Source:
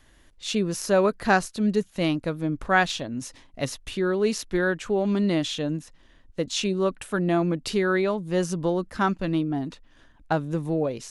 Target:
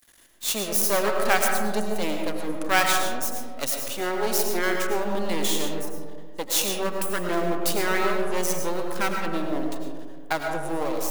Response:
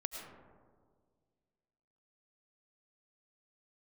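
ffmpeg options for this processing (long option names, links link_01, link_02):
-filter_complex "[0:a]aeval=exprs='max(val(0),0)':channel_layout=same,aemphasis=mode=production:type=bsi[link_01];[1:a]atrim=start_sample=2205[link_02];[link_01][link_02]afir=irnorm=-1:irlink=0,volume=5dB"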